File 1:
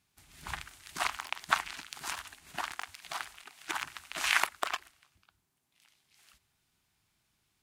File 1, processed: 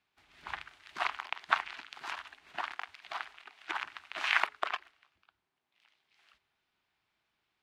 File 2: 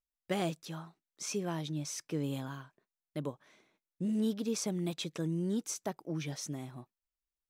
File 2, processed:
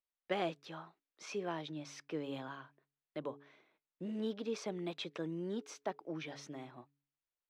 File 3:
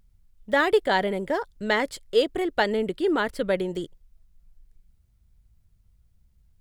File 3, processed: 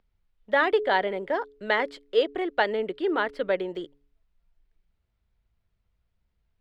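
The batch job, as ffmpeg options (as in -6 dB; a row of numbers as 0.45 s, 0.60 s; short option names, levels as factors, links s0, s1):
-filter_complex "[0:a]acrossover=split=310 4100:gain=0.224 1 0.0708[s0][s1][s2];[s0][s1][s2]amix=inputs=3:normalize=0,bandreject=f=141.7:t=h:w=4,bandreject=f=283.4:t=h:w=4,bandreject=f=425.1:t=h:w=4"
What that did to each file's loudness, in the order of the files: -1.0 LU, -5.5 LU, -1.5 LU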